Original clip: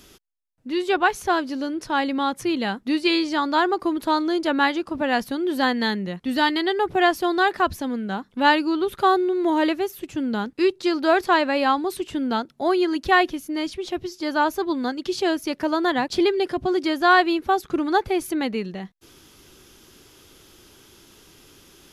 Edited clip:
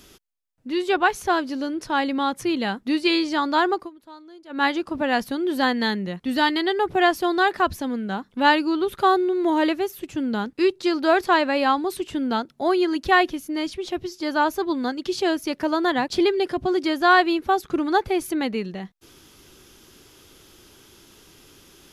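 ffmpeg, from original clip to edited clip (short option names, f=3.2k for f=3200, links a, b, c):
-filter_complex "[0:a]asplit=3[a][b][c];[a]atrim=end=3.9,asetpts=PTS-STARTPTS,afade=t=out:st=3.73:d=0.17:silence=0.0749894[d];[b]atrim=start=3.9:end=4.49,asetpts=PTS-STARTPTS,volume=-22.5dB[e];[c]atrim=start=4.49,asetpts=PTS-STARTPTS,afade=t=in:d=0.17:silence=0.0749894[f];[d][e][f]concat=n=3:v=0:a=1"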